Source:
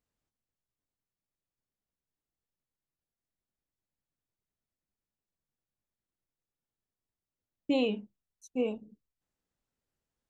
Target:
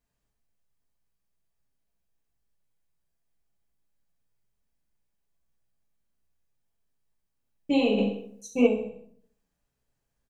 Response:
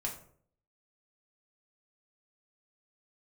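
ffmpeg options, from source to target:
-filter_complex "[0:a]aecho=1:1:65|130|195|260|325:0.376|0.18|0.0866|0.0416|0.02[s0];[1:a]atrim=start_sample=2205[s1];[s0][s1]afir=irnorm=-1:irlink=0,asplit=3[s2][s3][s4];[s2]afade=t=out:st=7.97:d=0.02[s5];[s3]acontrast=83,afade=t=in:st=7.97:d=0.02,afade=t=out:st=8.66:d=0.02[s6];[s4]afade=t=in:st=8.66:d=0.02[s7];[s5][s6][s7]amix=inputs=3:normalize=0,volume=1.58"

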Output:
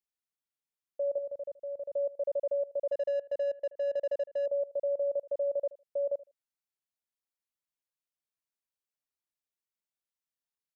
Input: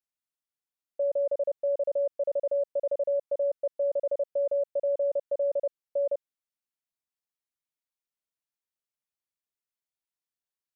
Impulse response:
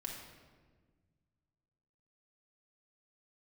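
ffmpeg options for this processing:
-filter_complex "[0:a]asettb=1/sr,asplit=3[s0][s1][s2];[s0]atrim=end=1.184[s3];[s1]atrim=start=1.18:end=1.95,asetpts=PTS-STARTPTS,afade=t=in:d=0.004:c=qsin,afade=t=out:st=0.766:d=0.004:c=qsin,equalizer=f=680:w=0.38:g=-7.5[s4];[s2]atrim=start=1.946[s5];[s3][s4]acrossfade=d=0.004:c1=hsin:c2=qsin[s6];[s6][s5]acrossfade=d=0.004:c1=qsin:c2=hsin,aecho=1:1:78|156:0.112|0.0191,asettb=1/sr,asplit=3[s7][s8][s9];[s7]atrim=end=2.924[s10];[s8]atrim=start=2.92:end=4.46,asetpts=PTS-STARTPTS,afade=t=in:d=0.004:c=qsin,afade=t=out:st=1.536:d=0.004:c=qsin,adynamicsmooth=sensitivity=7.5:basefreq=780[s11];[s9]atrim=start=4.456[s12];[s10][s11]acrossfade=d=0.004:c1=hsin:c2=qsin[s13];[s13][s12]acrossfade=d=0.004:c1=qsin:c2=hsin,volume=0.631"

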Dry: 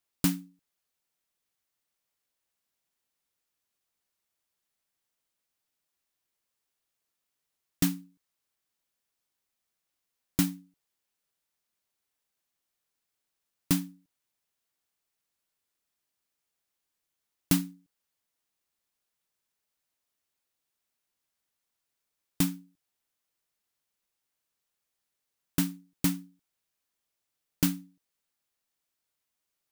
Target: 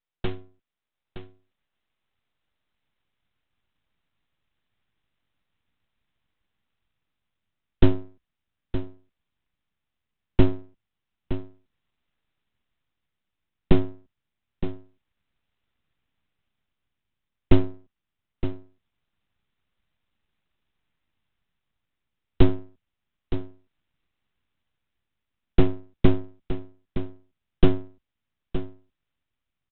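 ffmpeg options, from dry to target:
-af "afreqshift=-45,asubboost=boost=7:cutoff=170,dynaudnorm=f=300:g=7:m=2.82,aresample=8000,aeval=exprs='abs(val(0))':c=same,aresample=44100,aecho=1:1:917:0.266"

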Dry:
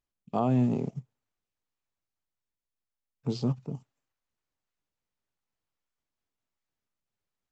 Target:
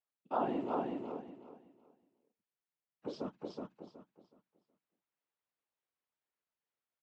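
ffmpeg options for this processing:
-filter_complex "[0:a]asetrate=47187,aresample=44100,flanger=delay=3.9:depth=8:regen=75:speed=1.8:shape=sinusoidal,afftfilt=real='hypot(re,im)*cos(2*PI*random(0))':imag='hypot(re,im)*sin(2*PI*random(1))':win_size=512:overlap=0.75,highpass=380,lowpass=3200,asplit=2[s0][s1];[s1]aecho=0:1:371|742|1113|1484:0.668|0.167|0.0418|0.0104[s2];[s0][s2]amix=inputs=2:normalize=0,volume=2.11"

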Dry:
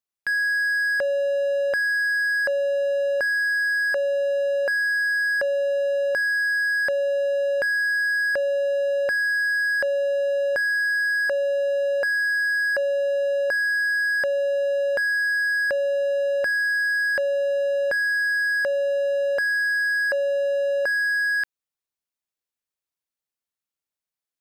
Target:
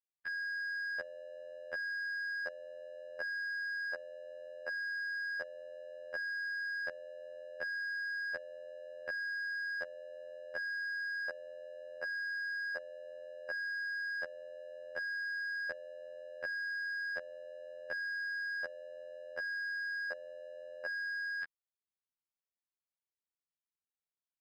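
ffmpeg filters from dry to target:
-af "afftfilt=real='hypot(re,im)*cos(PI*b)':imag='0':win_size=2048:overlap=0.75,adynamicsmooth=sensitivity=5:basefreq=5100,volume=0.355"

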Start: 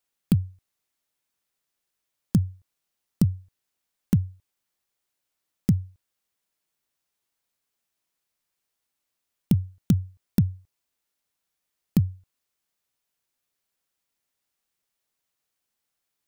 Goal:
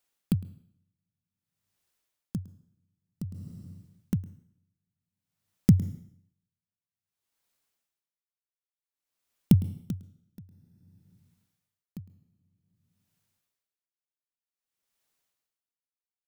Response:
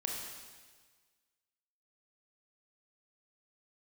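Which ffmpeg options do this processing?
-filter_complex "[0:a]asplit=2[s0][s1];[1:a]atrim=start_sample=2205,asetrate=52920,aresample=44100,adelay=108[s2];[s1][s2]afir=irnorm=-1:irlink=0,volume=0.237[s3];[s0][s3]amix=inputs=2:normalize=0,aeval=exprs='val(0)*pow(10,-30*(0.5-0.5*cos(2*PI*0.53*n/s))/20)':c=same,volume=1.33"

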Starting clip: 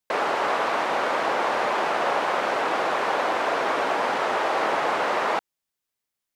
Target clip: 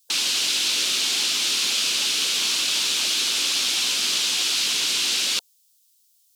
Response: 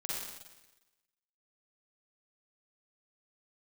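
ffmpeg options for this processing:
-af "afftfilt=real='re*lt(hypot(re,im),0.141)':imag='im*lt(hypot(re,im),0.141)':win_size=1024:overlap=0.75,aexciter=amount=8.9:drive=9.3:freq=2900,volume=0.562"

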